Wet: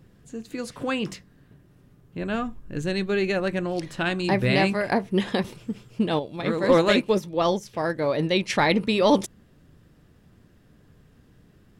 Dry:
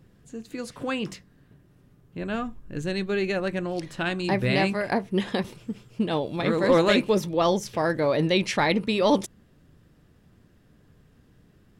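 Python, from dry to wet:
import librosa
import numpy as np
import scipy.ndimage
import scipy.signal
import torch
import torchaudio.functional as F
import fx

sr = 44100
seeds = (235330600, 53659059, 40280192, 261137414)

y = fx.upward_expand(x, sr, threshold_db=-33.0, expansion=1.5, at=(6.19, 8.5))
y = F.gain(torch.from_numpy(y), 2.0).numpy()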